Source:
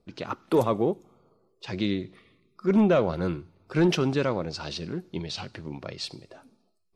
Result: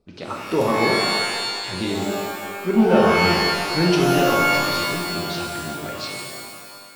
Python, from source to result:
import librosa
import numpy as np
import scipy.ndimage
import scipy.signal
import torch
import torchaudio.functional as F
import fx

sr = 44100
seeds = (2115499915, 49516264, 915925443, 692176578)

y = fx.rev_shimmer(x, sr, seeds[0], rt60_s=1.8, semitones=12, shimmer_db=-2, drr_db=-1.5)